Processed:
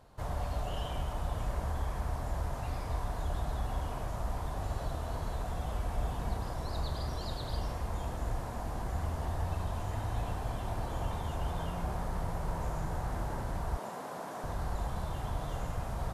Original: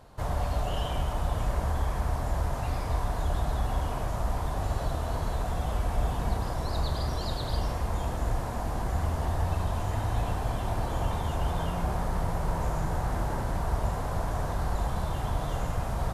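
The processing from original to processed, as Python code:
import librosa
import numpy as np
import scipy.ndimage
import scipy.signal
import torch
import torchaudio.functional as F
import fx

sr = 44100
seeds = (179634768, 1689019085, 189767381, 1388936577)

y = fx.highpass(x, sr, hz=200.0, slope=24, at=(13.77, 14.44))
y = y * 10.0 ** (-6.0 / 20.0)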